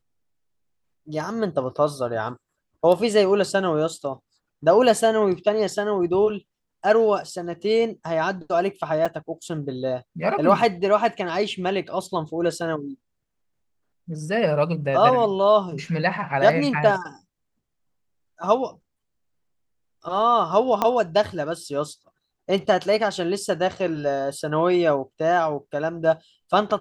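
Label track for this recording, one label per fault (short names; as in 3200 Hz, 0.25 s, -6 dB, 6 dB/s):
9.050000	9.060000	gap 5.1 ms
20.820000	20.820000	pop -8 dBFS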